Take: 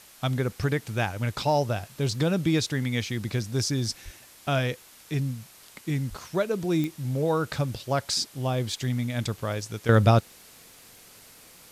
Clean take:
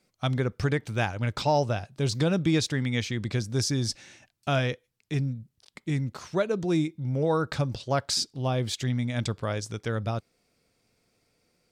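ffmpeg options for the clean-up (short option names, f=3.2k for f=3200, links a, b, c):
-filter_complex "[0:a]adeclick=t=4,asplit=3[a][b][c];[a]afade=t=out:st=4.04:d=0.02[d];[b]highpass=f=140:w=0.5412,highpass=f=140:w=1.3066,afade=t=in:st=4.04:d=0.02,afade=t=out:st=4.16:d=0.02[e];[c]afade=t=in:st=4.16:d=0.02[f];[d][e][f]amix=inputs=3:normalize=0,asplit=3[g][h][i];[g]afade=t=out:st=6.09:d=0.02[j];[h]highpass=f=140:w=0.5412,highpass=f=140:w=1.3066,afade=t=in:st=6.09:d=0.02,afade=t=out:st=6.21:d=0.02[k];[i]afade=t=in:st=6.21:d=0.02[l];[j][k][l]amix=inputs=3:normalize=0,afwtdn=0.0032,asetnsamples=n=441:p=0,asendcmd='9.89 volume volume -11.5dB',volume=0dB"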